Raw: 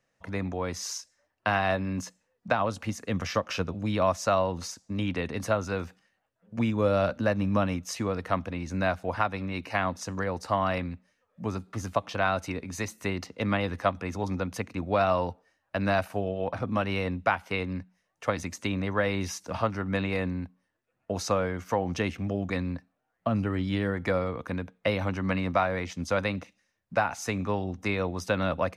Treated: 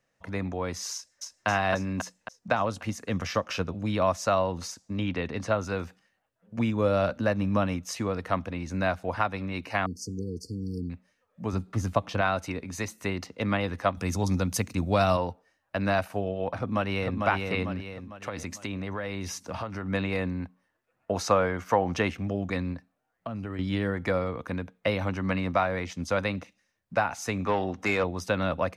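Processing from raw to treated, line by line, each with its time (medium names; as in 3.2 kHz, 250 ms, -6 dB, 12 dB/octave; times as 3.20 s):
0.94–1.47 s: echo throw 270 ms, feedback 60%, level -1 dB
4.96–5.58 s: low-pass 6 kHz
9.86–10.90 s: brick-wall FIR band-stop 480–4300 Hz
11.53–12.21 s: bass shelf 290 Hz +7.5 dB
13.97–15.17 s: tone controls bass +7 dB, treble +14 dB
16.57–17.20 s: echo throw 450 ms, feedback 45%, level -3.5 dB
17.76–19.85 s: compression, threshold -29 dBFS
20.40–22.14 s: peaking EQ 1.1 kHz +5.5 dB 2.6 oct
22.73–23.59 s: compression 5:1, threshold -31 dBFS
27.46–28.04 s: overdrive pedal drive 16 dB, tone 2.6 kHz, clips at -15 dBFS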